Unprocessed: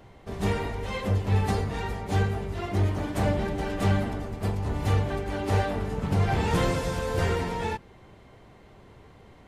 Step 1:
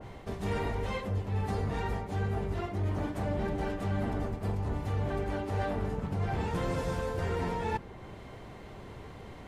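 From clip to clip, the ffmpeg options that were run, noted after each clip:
-af "areverse,acompressor=threshold=-34dB:ratio=10,areverse,adynamicequalizer=threshold=0.00141:dfrequency=2000:dqfactor=0.7:tfrequency=2000:tqfactor=0.7:attack=5:release=100:ratio=0.375:range=2.5:mode=cutabove:tftype=highshelf,volume=5.5dB"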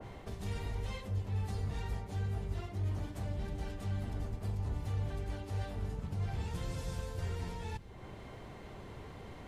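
-filter_complex "[0:a]acrossover=split=130|3000[a][b][c];[b]acompressor=threshold=-45dB:ratio=4[d];[a][d][c]amix=inputs=3:normalize=0,volume=-1.5dB"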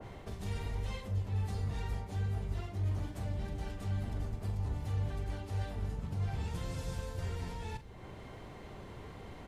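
-filter_complex "[0:a]asplit=2[a][b];[b]adelay=42,volume=-12dB[c];[a][c]amix=inputs=2:normalize=0"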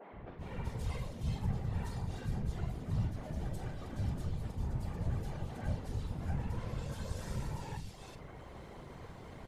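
-filter_complex "[0:a]afftfilt=real='hypot(re,im)*cos(2*PI*random(0))':imag='hypot(re,im)*sin(2*PI*random(1))':win_size=512:overlap=0.75,acrossover=split=250|2700[a][b][c];[a]adelay=120[d];[c]adelay=380[e];[d][b][e]amix=inputs=3:normalize=0,volume=5.5dB"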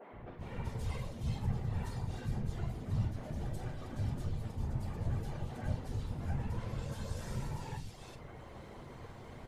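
-af "flanger=delay=7.9:depth=1.3:regen=-54:speed=0.52:shape=triangular,volume=4dB"

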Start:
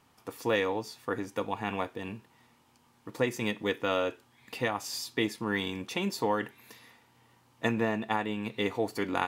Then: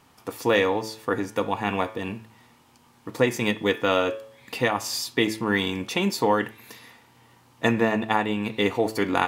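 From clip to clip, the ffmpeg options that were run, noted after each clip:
-af "bandreject=f=109.9:t=h:w=4,bandreject=f=219.8:t=h:w=4,bandreject=f=329.7:t=h:w=4,bandreject=f=439.6:t=h:w=4,bandreject=f=549.5:t=h:w=4,bandreject=f=659.4:t=h:w=4,bandreject=f=769.3:t=h:w=4,bandreject=f=879.2:t=h:w=4,bandreject=f=989.1:t=h:w=4,bandreject=f=1.099k:t=h:w=4,bandreject=f=1.2089k:t=h:w=4,bandreject=f=1.3188k:t=h:w=4,bandreject=f=1.4287k:t=h:w=4,bandreject=f=1.5386k:t=h:w=4,bandreject=f=1.6485k:t=h:w=4,bandreject=f=1.7584k:t=h:w=4,bandreject=f=1.8683k:t=h:w=4,bandreject=f=1.9782k:t=h:w=4,bandreject=f=2.0881k:t=h:w=4,bandreject=f=2.198k:t=h:w=4,bandreject=f=2.3079k:t=h:w=4,bandreject=f=2.4178k:t=h:w=4,bandreject=f=2.5277k:t=h:w=4,bandreject=f=2.6376k:t=h:w=4,bandreject=f=2.7475k:t=h:w=4,bandreject=f=2.8574k:t=h:w=4,bandreject=f=2.9673k:t=h:w=4,bandreject=f=3.0772k:t=h:w=4,bandreject=f=3.1871k:t=h:w=4,bandreject=f=3.297k:t=h:w=4,bandreject=f=3.4069k:t=h:w=4,volume=7.5dB"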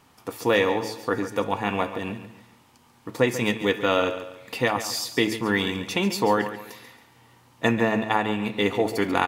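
-af "aecho=1:1:140|280|420|560:0.251|0.0879|0.0308|0.0108"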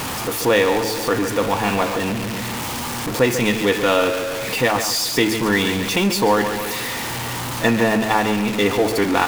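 -af "aeval=exprs='val(0)+0.5*0.0708*sgn(val(0))':c=same,volume=2.5dB"

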